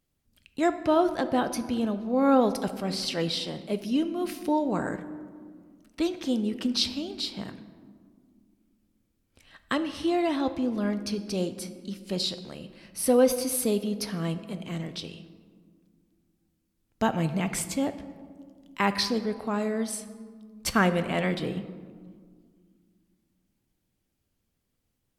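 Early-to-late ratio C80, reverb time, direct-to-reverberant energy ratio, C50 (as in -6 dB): 13.5 dB, 1.9 s, 9.5 dB, 12.0 dB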